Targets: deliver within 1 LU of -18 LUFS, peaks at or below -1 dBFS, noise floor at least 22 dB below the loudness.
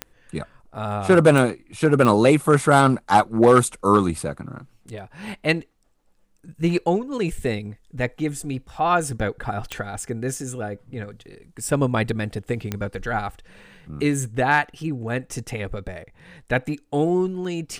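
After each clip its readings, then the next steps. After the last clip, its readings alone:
clicks 5; loudness -22.0 LUFS; peak -2.5 dBFS; loudness target -18.0 LUFS
-> de-click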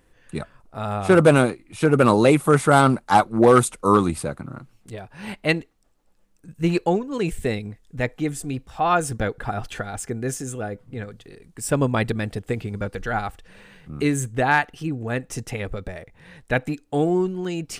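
clicks 0; loudness -22.0 LUFS; peak -2.5 dBFS; loudness target -18.0 LUFS
-> gain +4 dB; limiter -1 dBFS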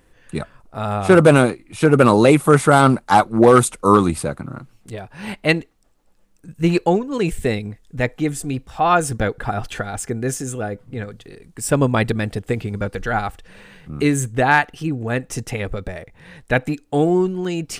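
loudness -18.0 LUFS; peak -1.0 dBFS; noise floor -56 dBFS

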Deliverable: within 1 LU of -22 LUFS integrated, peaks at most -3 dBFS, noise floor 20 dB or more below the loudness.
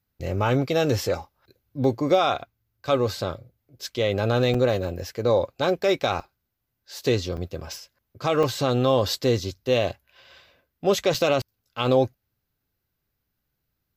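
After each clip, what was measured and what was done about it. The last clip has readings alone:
dropouts 5; longest dropout 4.6 ms; loudness -24.0 LUFS; peak -8.0 dBFS; loudness target -22.0 LUFS
-> interpolate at 4.54/6.2/7.37/8.43/11.14, 4.6 ms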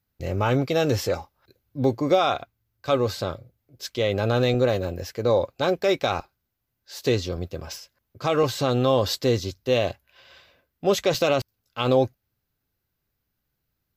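dropouts 0; loudness -24.0 LUFS; peak -8.0 dBFS; loudness target -22.0 LUFS
-> gain +2 dB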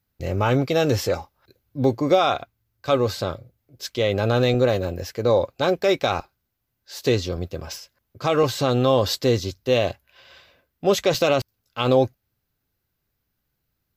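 loudness -22.0 LUFS; peak -6.0 dBFS; noise floor -77 dBFS

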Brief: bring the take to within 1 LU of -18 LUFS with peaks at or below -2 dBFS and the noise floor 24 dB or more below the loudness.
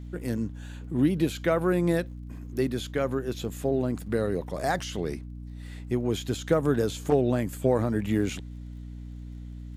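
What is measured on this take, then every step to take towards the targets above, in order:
ticks 34/s; hum 60 Hz; harmonics up to 300 Hz; hum level -36 dBFS; loudness -28.0 LUFS; peak -9.5 dBFS; loudness target -18.0 LUFS
-> de-click; notches 60/120/180/240/300 Hz; gain +10 dB; limiter -2 dBFS

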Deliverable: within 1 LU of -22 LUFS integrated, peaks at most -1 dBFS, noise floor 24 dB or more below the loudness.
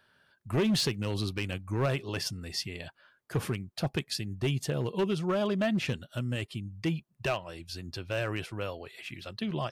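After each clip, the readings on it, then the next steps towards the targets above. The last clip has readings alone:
clipped 1.3%; flat tops at -22.5 dBFS; loudness -32.5 LUFS; peak -22.5 dBFS; loudness target -22.0 LUFS
-> clip repair -22.5 dBFS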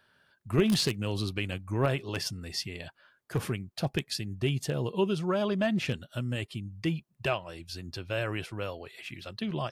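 clipped 0.0%; loudness -32.0 LUFS; peak -13.5 dBFS; loudness target -22.0 LUFS
-> gain +10 dB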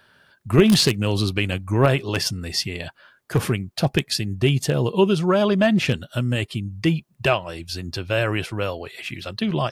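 loudness -22.0 LUFS; peak -3.5 dBFS; noise floor -59 dBFS

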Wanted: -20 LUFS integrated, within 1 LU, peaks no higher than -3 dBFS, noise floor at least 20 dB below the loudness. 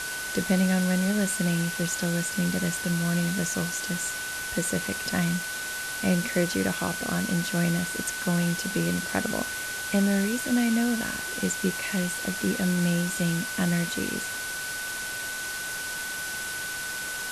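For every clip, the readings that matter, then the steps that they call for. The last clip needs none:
steady tone 1500 Hz; tone level -33 dBFS; noise floor -33 dBFS; noise floor target -47 dBFS; loudness -27.0 LUFS; peak -11.5 dBFS; loudness target -20.0 LUFS
-> notch 1500 Hz, Q 30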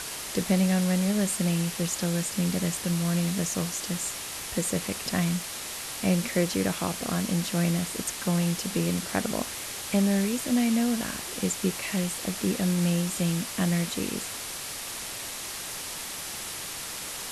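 steady tone none; noise floor -37 dBFS; noise floor target -48 dBFS
-> denoiser 11 dB, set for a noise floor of -37 dBFS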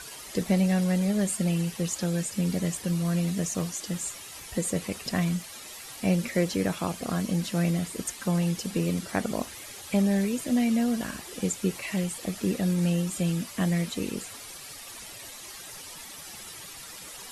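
noise floor -43 dBFS; noise floor target -48 dBFS
-> denoiser 6 dB, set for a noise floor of -43 dBFS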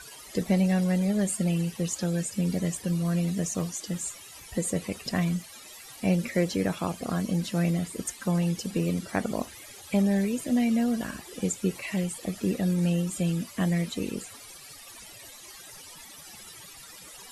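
noise floor -47 dBFS; noise floor target -49 dBFS
-> denoiser 6 dB, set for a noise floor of -47 dBFS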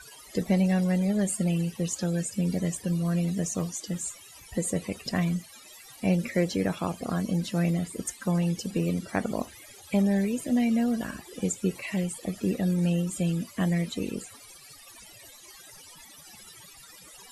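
noise floor -50 dBFS; loudness -28.5 LUFS; peak -12.0 dBFS; loudness target -20.0 LUFS
-> gain +8.5 dB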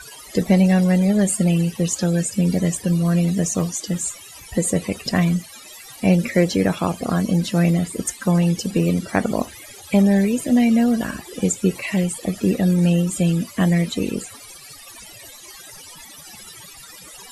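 loudness -20.0 LUFS; peak -3.5 dBFS; noise floor -42 dBFS

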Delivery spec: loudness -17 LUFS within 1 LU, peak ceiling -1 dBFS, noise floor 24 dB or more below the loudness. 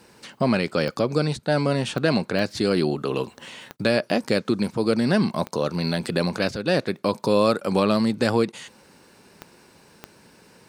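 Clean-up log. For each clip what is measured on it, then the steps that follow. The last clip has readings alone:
clicks 7; loudness -23.5 LUFS; peak -6.0 dBFS; loudness target -17.0 LUFS
-> de-click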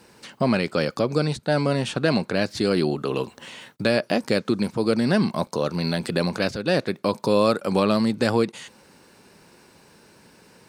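clicks 0; loudness -23.5 LUFS; peak -6.0 dBFS; loudness target -17.0 LUFS
-> gain +6.5 dB; limiter -1 dBFS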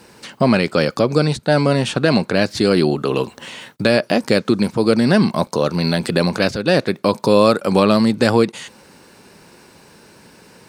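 loudness -17.0 LUFS; peak -1.0 dBFS; noise floor -48 dBFS

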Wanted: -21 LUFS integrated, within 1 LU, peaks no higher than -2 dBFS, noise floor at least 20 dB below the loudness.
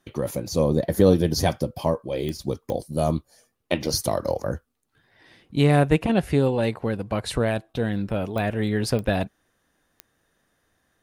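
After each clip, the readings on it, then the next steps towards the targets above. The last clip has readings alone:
clicks 5; loudness -24.0 LUFS; peak -4.0 dBFS; loudness target -21.0 LUFS
-> de-click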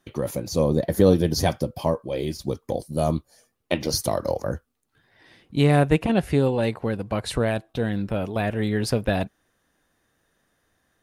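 clicks 0; loudness -24.0 LUFS; peak -4.0 dBFS; loudness target -21.0 LUFS
-> gain +3 dB; limiter -2 dBFS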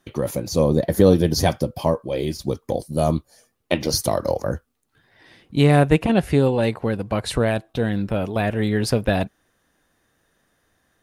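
loudness -21.0 LUFS; peak -2.0 dBFS; noise floor -69 dBFS

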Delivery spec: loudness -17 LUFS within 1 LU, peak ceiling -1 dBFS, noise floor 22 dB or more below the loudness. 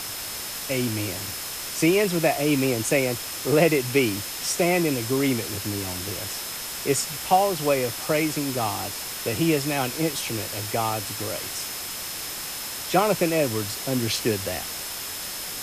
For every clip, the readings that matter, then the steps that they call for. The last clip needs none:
steady tone 5200 Hz; tone level -40 dBFS; noise floor -33 dBFS; noise floor target -47 dBFS; loudness -24.5 LUFS; peak -6.0 dBFS; loudness target -17.0 LUFS
-> notch 5200 Hz, Q 30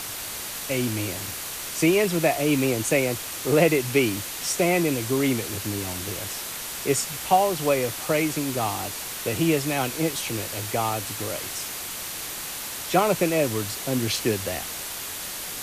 steady tone none; noise floor -34 dBFS; noise floor target -47 dBFS
-> denoiser 13 dB, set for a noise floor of -34 dBFS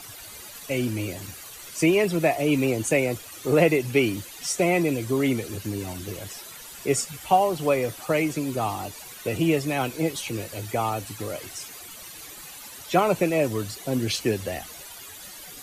noise floor -42 dBFS; noise floor target -47 dBFS
-> denoiser 6 dB, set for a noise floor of -42 dBFS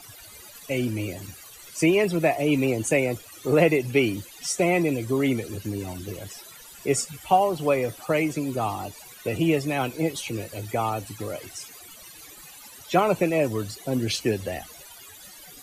noise floor -46 dBFS; noise floor target -47 dBFS
-> denoiser 6 dB, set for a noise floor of -46 dBFS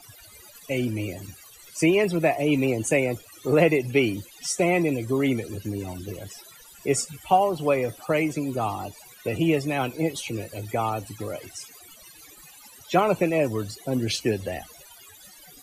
noise floor -49 dBFS; loudness -25.0 LUFS; peak -6.5 dBFS; loudness target -17.0 LUFS
-> gain +8 dB; limiter -1 dBFS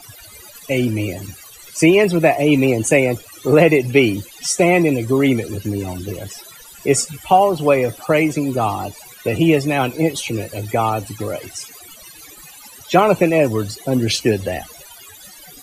loudness -17.5 LUFS; peak -1.0 dBFS; noise floor -41 dBFS

